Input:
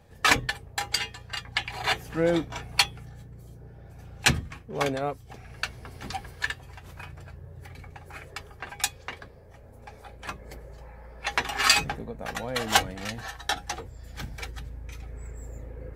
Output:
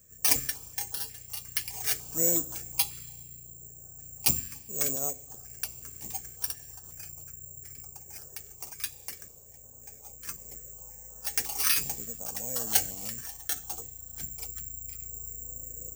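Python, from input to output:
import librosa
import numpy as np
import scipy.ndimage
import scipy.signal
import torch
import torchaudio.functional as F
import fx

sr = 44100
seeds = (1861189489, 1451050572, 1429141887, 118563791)

y = (np.kron(scipy.signal.resample_poly(x, 1, 6), np.eye(6)[0]) * 6)[:len(x)]
y = fx.rev_schroeder(y, sr, rt60_s=1.4, comb_ms=30, drr_db=17.5)
y = fx.filter_held_notch(y, sr, hz=5.5, low_hz=790.0, high_hz=2200.0)
y = y * 10.0 ** (-9.5 / 20.0)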